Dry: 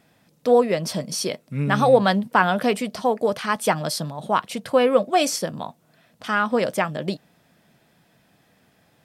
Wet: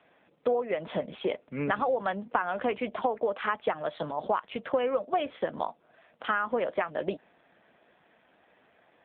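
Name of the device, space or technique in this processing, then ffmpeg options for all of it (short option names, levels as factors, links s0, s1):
voicemail: -af "highpass=360,lowpass=2900,acompressor=threshold=0.0447:ratio=10,volume=1.5" -ar 8000 -c:a libopencore_amrnb -b:a 7400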